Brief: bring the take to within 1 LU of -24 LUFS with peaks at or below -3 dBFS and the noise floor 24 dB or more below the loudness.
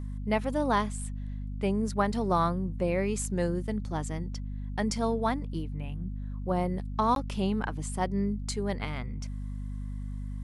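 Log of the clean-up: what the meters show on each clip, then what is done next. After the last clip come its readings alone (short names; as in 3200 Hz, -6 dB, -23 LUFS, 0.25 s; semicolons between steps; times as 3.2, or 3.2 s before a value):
dropouts 1; longest dropout 12 ms; hum 50 Hz; harmonics up to 250 Hz; hum level -33 dBFS; loudness -31.0 LUFS; peak -13.0 dBFS; loudness target -24.0 LUFS
-> interpolate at 7.15, 12 ms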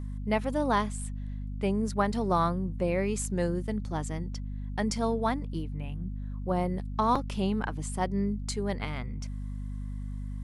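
dropouts 0; hum 50 Hz; harmonics up to 250 Hz; hum level -33 dBFS
-> notches 50/100/150/200/250 Hz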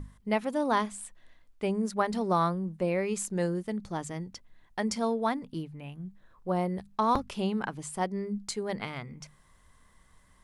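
hum none; loudness -31.5 LUFS; peak -13.5 dBFS; loudness target -24.0 LUFS
-> gain +7.5 dB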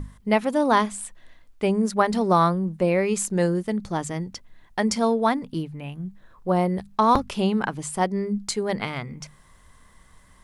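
loudness -24.0 LUFS; peak -6.0 dBFS; noise floor -54 dBFS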